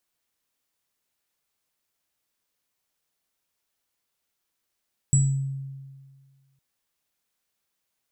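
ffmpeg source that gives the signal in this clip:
-f lavfi -i "aevalsrc='0.178*pow(10,-3*t/1.72)*sin(2*PI*136*t)+0.112*pow(10,-3*t/0.44)*sin(2*PI*7800*t)':d=1.46:s=44100"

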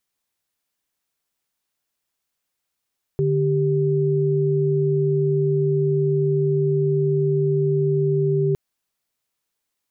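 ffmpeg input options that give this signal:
-f lavfi -i "aevalsrc='0.106*(sin(2*PI*146.83*t)+sin(2*PI*392*t))':d=5.36:s=44100"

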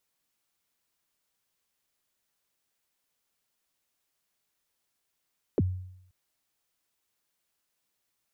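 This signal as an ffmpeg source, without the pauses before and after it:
-f lavfi -i "aevalsrc='0.112*pow(10,-3*t/0.75)*sin(2*PI*(520*0.034/log(92/520)*(exp(log(92/520)*min(t,0.034)/0.034)-1)+92*max(t-0.034,0)))':d=0.53:s=44100"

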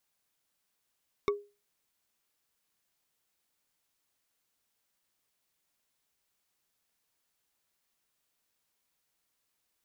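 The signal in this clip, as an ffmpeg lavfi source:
-f lavfi -i "aevalsrc='0.0794*pow(10,-3*t/0.3)*sin(2*PI*409*t)+0.0501*pow(10,-3*t/0.089)*sin(2*PI*1127.6*t)+0.0316*pow(10,-3*t/0.04)*sin(2*PI*2210.2*t)+0.02*pow(10,-3*t/0.022)*sin(2*PI*3653.6*t)+0.0126*pow(10,-3*t/0.013)*sin(2*PI*5456.1*t)':d=0.45:s=44100"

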